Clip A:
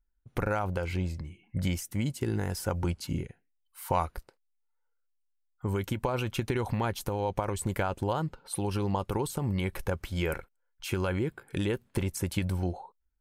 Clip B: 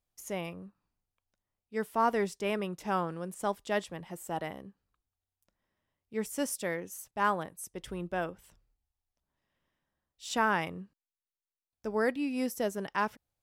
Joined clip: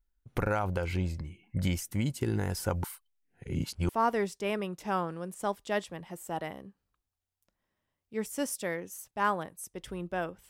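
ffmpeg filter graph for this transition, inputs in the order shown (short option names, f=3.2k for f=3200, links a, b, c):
-filter_complex "[0:a]apad=whole_dur=10.49,atrim=end=10.49,asplit=2[a][b];[a]atrim=end=2.842[c];[b]atrim=start=2.838:end=3.892,asetpts=PTS-STARTPTS,areverse[d];[1:a]atrim=start=1.888:end=8.49[e];[c][d]acrossfade=d=0.004:c1=hsin:c2=hsin[f];[f][e]acrossfade=d=0.004:c1=hsin:c2=hsin"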